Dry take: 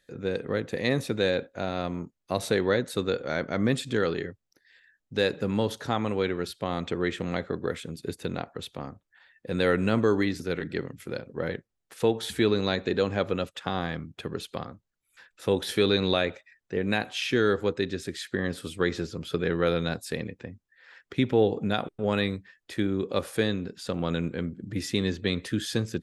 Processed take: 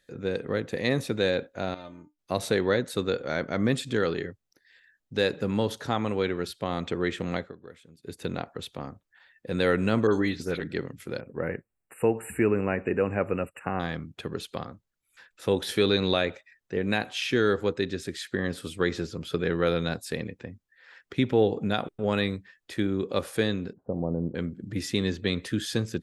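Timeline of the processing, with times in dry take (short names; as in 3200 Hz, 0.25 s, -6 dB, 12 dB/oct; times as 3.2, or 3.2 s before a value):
1.74–2.19 resonator 300 Hz, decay 0.15 s, mix 90%
7.36–8.2 dip -16.5 dB, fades 0.18 s
10.07–10.59 dispersion highs, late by 62 ms, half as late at 3000 Hz
11.2–13.8 brick-wall FIR band-stop 2900–7200 Hz
23.73–24.35 steep low-pass 850 Hz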